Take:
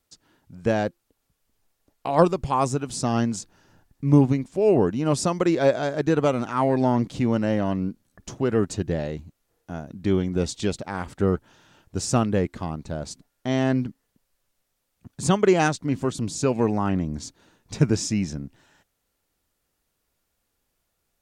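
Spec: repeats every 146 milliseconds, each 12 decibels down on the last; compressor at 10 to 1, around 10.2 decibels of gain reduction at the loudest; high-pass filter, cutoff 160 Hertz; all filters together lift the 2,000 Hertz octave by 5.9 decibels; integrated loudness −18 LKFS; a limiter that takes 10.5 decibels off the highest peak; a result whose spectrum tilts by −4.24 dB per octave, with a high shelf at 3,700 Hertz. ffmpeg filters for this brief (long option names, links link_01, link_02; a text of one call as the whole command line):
ffmpeg -i in.wav -af "highpass=160,equalizer=frequency=2000:width_type=o:gain=7,highshelf=frequency=3700:gain=3.5,acompressor=threshold=-22dB:ratio=10,alimiter=limit=-21dB:level=0:latency=1,aecho=1:1:146|292|438:0.251|0.0628|0.0157,volume=14dB" out.wav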